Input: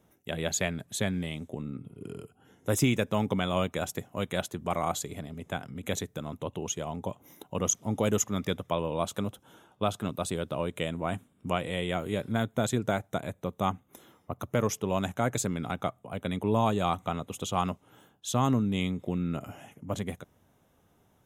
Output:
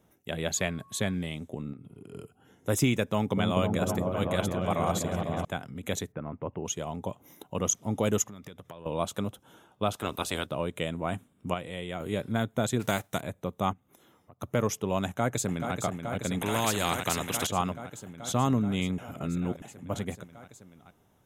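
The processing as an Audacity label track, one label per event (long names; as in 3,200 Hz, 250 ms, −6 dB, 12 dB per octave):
0.560000	1.130000	steady tone 1,100 Hz −55 dBFS
1.730000	2.130000	downward compressor, threshold −42 dBFS
3.080000	5.450000	echo whose low-pass opens from repeat to repeat 250 ms, low-pass from 400 Hz, each repeat up 1 octave, level 0 dB
6.120000	6.650000	Butterworth low-pass 2,300 Hz
8.220000	8.860000	downward compressor 12 to 1, threshold −40 dBFS
9.910000	10.450000	ceiling on every frequency bin ceiling under each frame's peak by 17 dB
11.540000	12.000000	clip gain −5.5 dB
12.790000	13.200000	spectral envelope flattened exponent 0.6
13.730000	14.420000	downward compressor 2.5 to 1, threshold −58 dBFS
15.050000	15.740000	delay throw 430 ms, feedback 85%, level −6.5 dB
16.410000	17.470000	every bin compressed towards the loudest bin 2 to 1
18.980000	19.620000	reverse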